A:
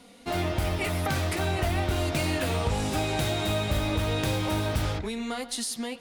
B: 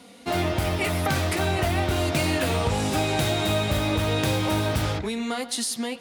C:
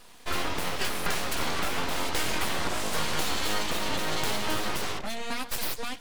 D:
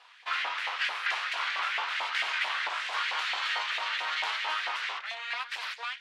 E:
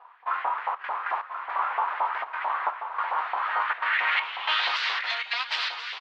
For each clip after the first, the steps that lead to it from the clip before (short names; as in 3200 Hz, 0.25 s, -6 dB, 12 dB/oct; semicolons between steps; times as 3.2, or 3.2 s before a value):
HPF 76 Hz; gain +4 dB
low shelf 150 Hz -11.5 dB; full-wave rectifier
LFO high-pass saw up 4.5 Hz 740–2000 Hz; Chebyshev band-pass 320–3000 Hz, order 2; tilt shelf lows -5.5 dB, about 1200 Hz; gain -3 dB
step gate "xxxxxxxx.xxxx..." 161 bpm -12 dB; low-pass sweep 990 Hz -> 4600 Hz, 3.36–4.76; on a send: echo 1.034 s -8.5 dB; on the sum: gain +3.5 dB